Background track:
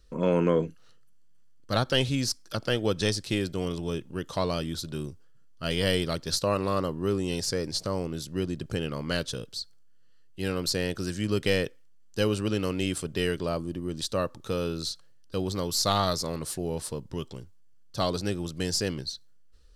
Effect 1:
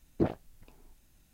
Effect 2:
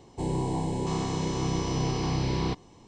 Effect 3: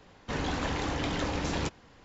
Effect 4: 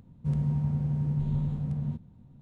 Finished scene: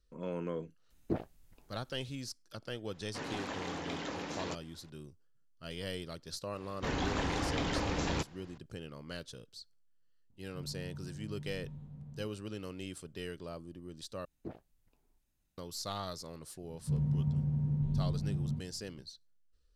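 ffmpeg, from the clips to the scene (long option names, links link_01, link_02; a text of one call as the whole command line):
ffmpeg -i bed.wav -i cue0.wav -i cue1.wav -i cue2.wav -i cue3.wav -filter_complex "[1:a]asplit=2[link_01][link_02];[3:a]asplit=2[link_03][link_04];[4:a]asplit=2[link_05][link_06];[0:a]volume=-14.5dB[link_07];[link_03]highpass=180[link_08];[link_06]lowshelf=frequency=440:gain=7[link_09];[link_07]asplit=2[link_10][link_11];[link_10]atrim=end=14.254[link_12];[link_02]atrim=end=1.33,asetpts=PTS-STARTPTS,volume=-16.5dB[link_13];[link_11]atrim=start=15.576[link_14];[link_01]atrim=end=1.33,asetpts=PTS-STARTPTS,volume=-6dB,afade=type=in:duration=0.004:curve=hsin,afade=type=out:start_time=1.326:duration=0.004:curve=hsin,adelay=900[link_15];[link_08]atrim=end=2.04,asetpts=PTS-STARTPTS,volume=-7.5dB,afade=type=in:duration=0.004:curve=hsin,afade=type=out:start_time=2.036:duration=0.004:curve=hsin,adelay=2860[link_16];[link_04]atrim=end=2.04,asetpts=PTS-STARTPTS,volume=-2.5dB,afade=type=in:duration=0.004:curve=hsin,afade=type=out:start_time=2.036:duration=0.004:curve=hsin,adelay=6540[link_17];[link_05]atrim=end=2.41,asetpts=PTS-STARTPTS,volume=-17.5dB,afade=type=in:duration=0.004:curve=hsin,afade=type=out:start_time=2.406:duration=0.004:curve=hsin,adelay=10300[link_18];[link_09]atrim=end=2.41,asetpts=PTS-STARTPTS,volume=-10dB,afade=type=in:duration=0.004:curve=hsin,afade=type=out:start_time=2.406:duration=0.004:curve=hsin,adelay=16630[link_19];[link_12][link_13]acrossfade=duration=0.004:curve1=hsin:curve2=hsin[link_20];[link_20][link_14]acrossfade=duration=0.004:curve1=hsin:curve2=hsin[link_21];[link_21][link_15][link_16][link_17][link_18][link_19]amix=inputs=6:normalize=0" out.wav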